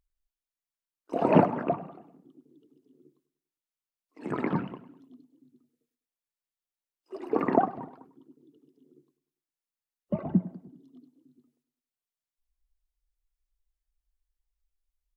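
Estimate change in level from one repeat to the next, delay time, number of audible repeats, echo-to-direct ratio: -6.5 dB, 100 ms, 3, -16.0 dB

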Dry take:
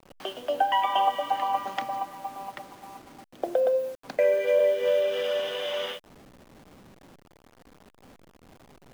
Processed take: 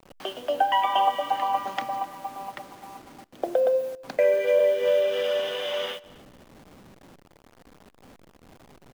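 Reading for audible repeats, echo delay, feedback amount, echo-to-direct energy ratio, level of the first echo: 2, 255 ms, 26%, -22.5 dB, -23.0 dB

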